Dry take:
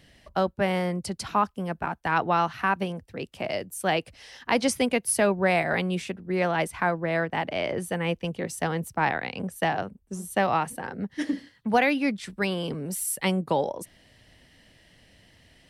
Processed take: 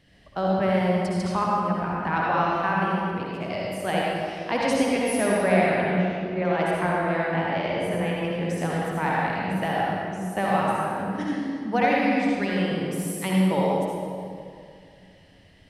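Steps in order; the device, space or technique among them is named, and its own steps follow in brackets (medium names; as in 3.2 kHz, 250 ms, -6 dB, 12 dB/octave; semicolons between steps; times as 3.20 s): 5.69–6.45 s: distance through air 260 m; swimming-pool hall (reverberation RT60 2.3 s, pre-delay 55 ms, DRR -4.5 dB; treble shelf 5.7 kHz -7.5 dB); trim -4 dB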